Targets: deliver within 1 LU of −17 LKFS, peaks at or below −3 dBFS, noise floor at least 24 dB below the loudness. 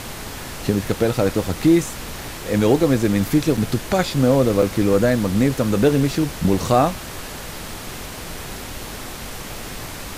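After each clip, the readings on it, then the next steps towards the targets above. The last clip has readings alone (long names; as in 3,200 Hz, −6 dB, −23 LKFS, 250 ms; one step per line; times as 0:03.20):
number of dropouts 2; longest dropout 4.5 ms; background noise floor −33 dBFS; target noise floor −43 dBFS; integrated loudness −19.0 LKFS; sample peak −3.5 dBFS; target loudness −17.0 LKFS
→ repair the gap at 0:03.57/0:04.62, 4.5 ms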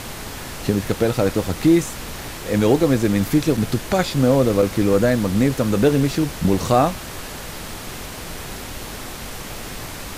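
number of dropouts 0; background noise floor −33 dBFS; target noise floor −43 dBFS
→ noise reduction from a noise print 10 dB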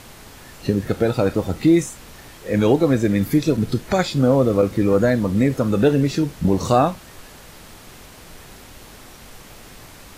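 background noise floor −43 dBFS; integrated loudness −19.0 LKFS; sample peak −3.5 dBFS; target loudness −17.0 LKFS
→ level +2 dB
brickwall limiter −3 dBFS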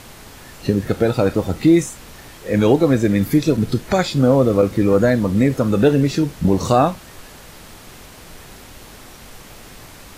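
integrated loudness −17.0 LKFS; sample peak −3.0 dBFS; background noise floor −41 dBFS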